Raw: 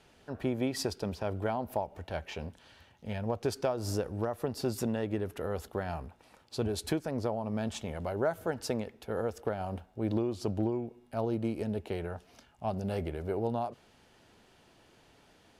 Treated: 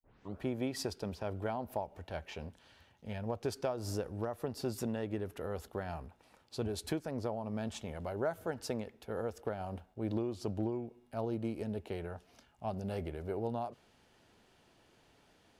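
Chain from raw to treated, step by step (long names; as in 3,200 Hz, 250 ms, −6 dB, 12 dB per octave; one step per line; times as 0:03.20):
turntable start at the beginning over 0.40 s
noise gate with hold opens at −54 dBFS
level −4.5 dB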